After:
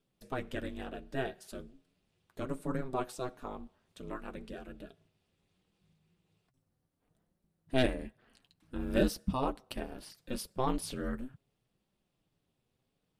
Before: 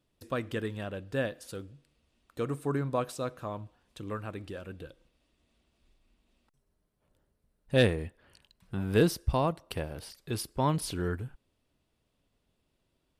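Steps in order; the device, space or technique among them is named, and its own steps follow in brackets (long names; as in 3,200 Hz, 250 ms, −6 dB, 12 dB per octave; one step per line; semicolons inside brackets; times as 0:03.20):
alien voice (ring modulation 130 Hz; flanger 0.67 Hz, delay 5 ms, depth 3.2 ms, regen −43%)
parametric band 210 Hz +2 dB 0.39 octaves
level +2.5 dB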